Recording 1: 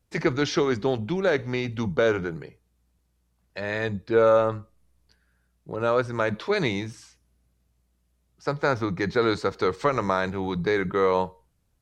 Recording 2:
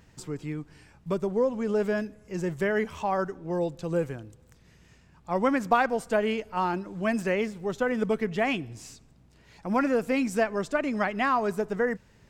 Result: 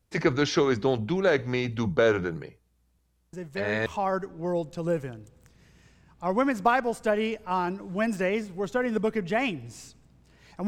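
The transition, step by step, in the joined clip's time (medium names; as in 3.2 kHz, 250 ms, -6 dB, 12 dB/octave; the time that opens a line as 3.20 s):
recording 1
3.33 s: add recording 2 from 2.39 s 0.53 s -8 dB
3.86 s: go over to recording 2 from 2.92 s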